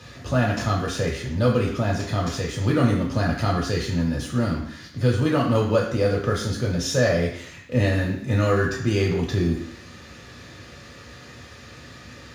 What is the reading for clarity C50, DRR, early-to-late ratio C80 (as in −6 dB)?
5.5 dB, −3.0 dB, 8.0 dB